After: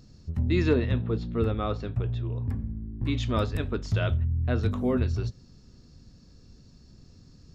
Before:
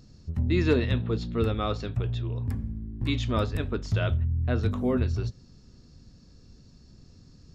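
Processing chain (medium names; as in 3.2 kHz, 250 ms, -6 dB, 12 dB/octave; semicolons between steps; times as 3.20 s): 0.69–3.17 s: treble shelf 3.1 kHz -11 dB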